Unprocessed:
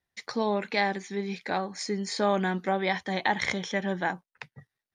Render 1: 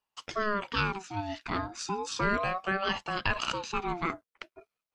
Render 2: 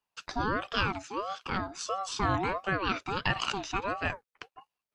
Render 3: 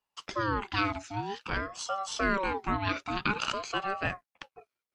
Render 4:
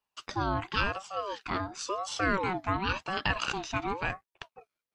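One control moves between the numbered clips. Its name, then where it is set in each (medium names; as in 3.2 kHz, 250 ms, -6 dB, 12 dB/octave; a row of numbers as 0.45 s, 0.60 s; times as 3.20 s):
ring modulator with a swept carrier, at: 0.35 Hz, 1.5 Hz, 0.51 Hz, 0.94 Hz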